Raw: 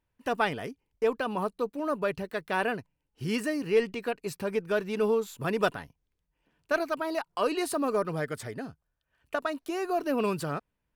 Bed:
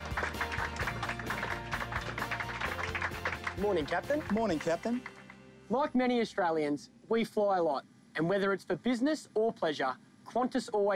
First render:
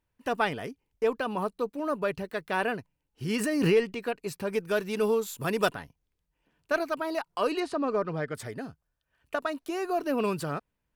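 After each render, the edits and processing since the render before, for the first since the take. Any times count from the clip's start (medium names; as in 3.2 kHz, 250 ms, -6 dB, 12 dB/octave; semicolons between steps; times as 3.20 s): 3.30–3.93 s: swell ahead of each attack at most 36 dB/s; 4.53–5.69 s: treble shelf 4.8 kHz +9 dB; 7.60–8.35 s: distance through air 120 m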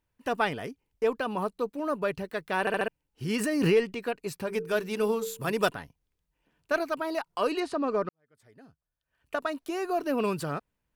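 2.60 s: stutter in place 0.07 s, 4 plays; 4.44–5.53 s: hum notches 50/100/150/200/250/300/350/400/450 Hz; 8.09–9.39 s: fade in quadratic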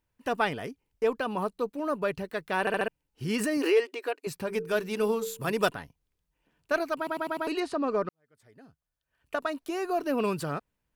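3.57–4.27 s: brick-wall FIR high-pass 260 Hz; 6.97 s: stutter in place 0.10 s, 5 plays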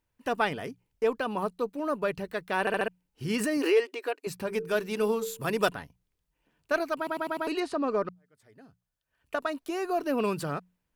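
hum notches 60/120/180 Hz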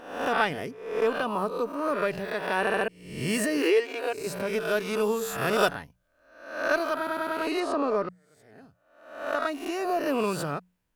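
reverse spectral sustain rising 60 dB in 0.71 s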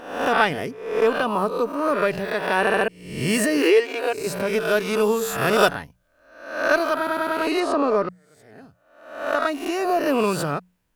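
trim +6 dB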